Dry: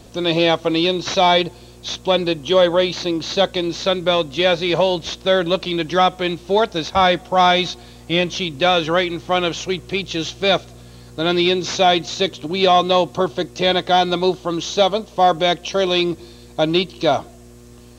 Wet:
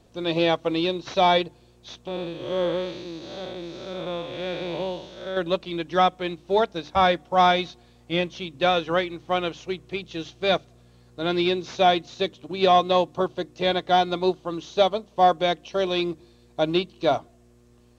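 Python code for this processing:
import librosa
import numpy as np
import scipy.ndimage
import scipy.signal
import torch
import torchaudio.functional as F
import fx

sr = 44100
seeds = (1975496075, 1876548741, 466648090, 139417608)

y = fx.spec_blur(x, sr, span_ms=244.0, at=(2.07, 5.37))
y = fx.high_shelf(y, sr, hz=3800.0, db=-7.0)
y = fx.hum_notches(y, sr, base_hz=50, count=6)
y = fx.upward_expand(y, sr, threshold_db=-31.0, expansion=1.5)
y = y * librosa.db_to_amplitude(-2.5)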